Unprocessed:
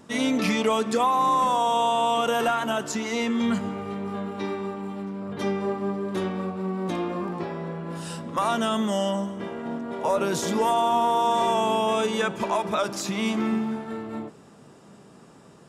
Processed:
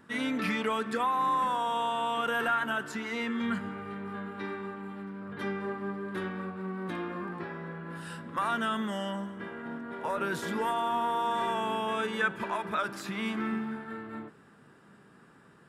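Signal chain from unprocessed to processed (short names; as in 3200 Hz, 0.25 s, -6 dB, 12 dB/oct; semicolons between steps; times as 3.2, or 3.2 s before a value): fifteen-band EQ 630 Hz -5 dB, 1600 Hz +11 dB, 6300 Hz -10 dB; gain -7.5 dB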